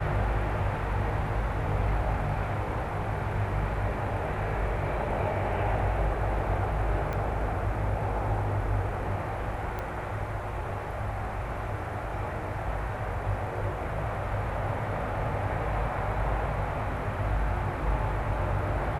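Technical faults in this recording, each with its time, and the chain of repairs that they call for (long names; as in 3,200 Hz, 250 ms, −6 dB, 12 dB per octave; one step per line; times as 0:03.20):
0:07.13: click −21 dBFS
0:09.79: click −21 dBFS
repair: click removal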